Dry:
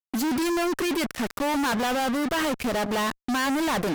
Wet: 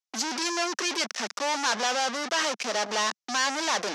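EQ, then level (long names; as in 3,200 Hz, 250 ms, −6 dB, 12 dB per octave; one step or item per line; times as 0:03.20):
Butterworth high-pass 210 Hz 48 dB per octave
low-pass with resonance 5,900 Hz, resonance Q 3.2
parametric band 270 Hz −13.5 dB 1.1 octaves
0.0 dB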